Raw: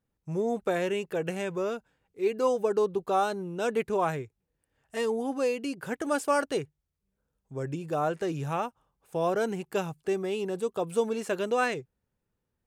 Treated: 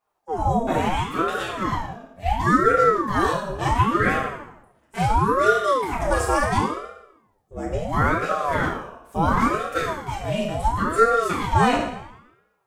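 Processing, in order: FDN reverb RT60 0.93 s, low-frequency decay 0.9×, high-frequency decay 0.8×, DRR -7 dB; ring modulator with a swept carrier 570 Hz, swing 65%, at 0.72 Hz; trim +2 dB

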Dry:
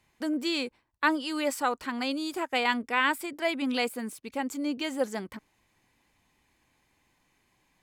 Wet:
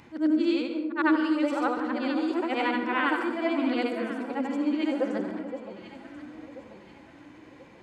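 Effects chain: short-time spectra conjugated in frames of 195 ms; high-pass 77 Hz; tape spacing loss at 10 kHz 21 dB; small resonant body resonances 330/1400 Hz, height 8 dB, ringing for 35 ms; upward compressor, threshold -43 dBFS; echo whose repeats swap between lows and highs 518 ms, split 1.1 kHz, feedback 63%, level -9 dB; plate-style reverb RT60 0.67 s, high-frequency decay 0.5×, pre-delay 120 ms, DRR 8.5 dB; trim +4 dB

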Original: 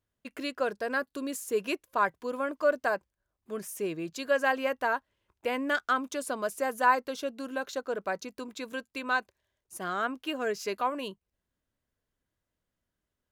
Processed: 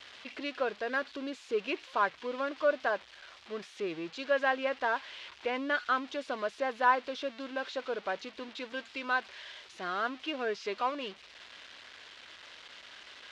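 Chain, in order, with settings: zero-crossing glitches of -24 dBFS; low-pass 3.7 kHz 24 dB/octave; peaking EQ 160 Hz -6 dB 1.1 oct; trim -2 dB

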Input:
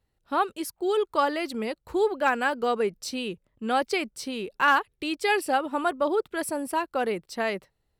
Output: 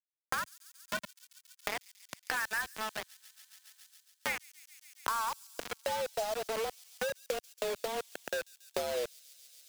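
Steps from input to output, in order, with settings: gliding tape speed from 100% -> 65%; low-pass 8.2 kHz 12 dB/octave; treble shelf 3.9 kHz -9 dB; in parallel at +2 dB: compression 6:1, threshold -31 dBFS, peak gain reduction 13.5 dB; on the sum: peak limiter -20 dBFS, peak gain reduction 10.5 dB; band-pass sweep 1.6 kHz -> 310 Hz, 4.12–6.63 s; trance gate ".x.xx..xxxxxxx." 65 bpm -12 dB; frequency shift +220 Hz; word length cut 6-bit, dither none; on a send: feedback echo behind a high-pass 139 ms, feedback 57%, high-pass 5.3 kHz, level -13 dB; on the sum: three bands compressed up and down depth 100%

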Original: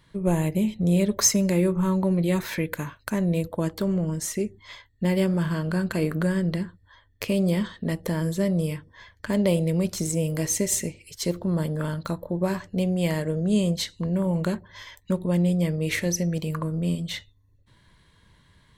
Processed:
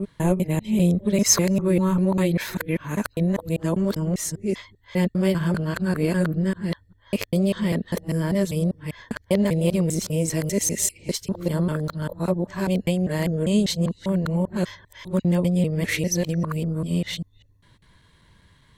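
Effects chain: time reversed locally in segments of 198 ms; trim +2 dB

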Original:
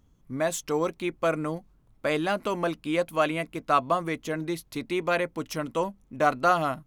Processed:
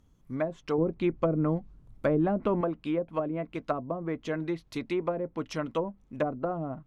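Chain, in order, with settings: low-pass that closes with the level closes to 420 Hz, closed at -21 dBFS; 0.78–2.61 s: bass shelf 300 Hz +10 dB; trim -1 dB

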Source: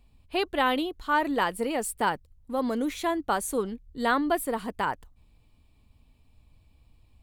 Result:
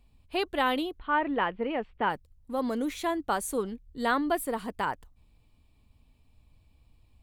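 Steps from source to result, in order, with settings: 0.99–2.10 s: steep low-pass 3.1 kHz 36 dB/octave; trim -2 dB

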